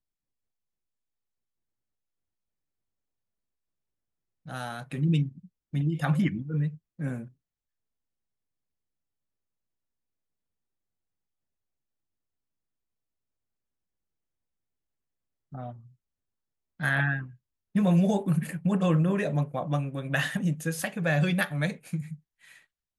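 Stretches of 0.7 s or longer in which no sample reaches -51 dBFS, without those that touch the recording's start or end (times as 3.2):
7.3–15.52
15.89–16.8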